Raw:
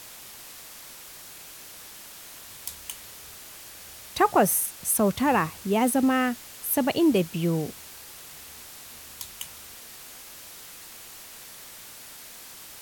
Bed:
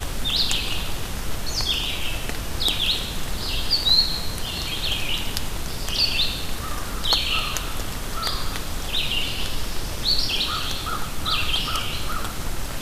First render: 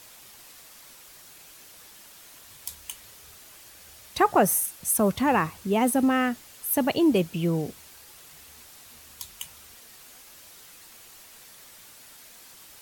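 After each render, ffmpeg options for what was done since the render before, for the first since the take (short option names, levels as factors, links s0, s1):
-af "afftdn=nr=6:nf=-45"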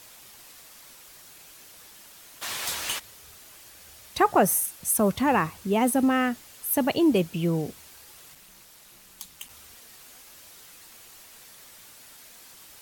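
-filter_complex "[0:a]asplit=3[s0][s1][s2];[s0]afade=t=out:st=2.41:d=0.02[s3];[s1]asplit=2[s4][s5];[s5]highpass=f=720:p=1,volume=31.6,asoftclip=type=tanh:threshold=0.211[s6];[s4][s6]amix=inputs=2:normalize=0,lowpass=f=3400:p=1,volume=0.501,afade=t=in:st=2.41:d=0.02,afade=t=out:st=2.98:d=0.02[s7];[s2]afade=t=in:st=2.98:d=0.02[s8];[s3][s7][s8]amix=inputs=3:normalize=0,asplit=3[s9][s10][s11];[s9]afade=t=out:st=8.34:d=0.02[s12];[s10]aeval=exprs='val(0)*sin(2*PI*110*n/s)':c=same,afade=t=in:st=8.34:d=0.02,afade=t=out:st=9.48:d=0.02[s13];[s11]afade=t=in:st=9.48:d=0.02[s14];[s12][s13][s14]amix=inputs=3:normalize=0"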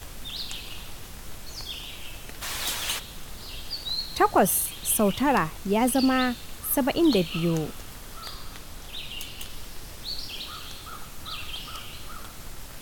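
-filter_complex "[1:a]volume=0.224[s0];[0:a][s0]amix=inputs=2:normalize=0"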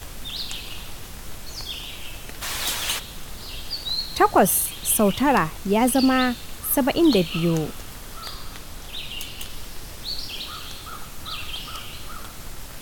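-af "volume=1.5"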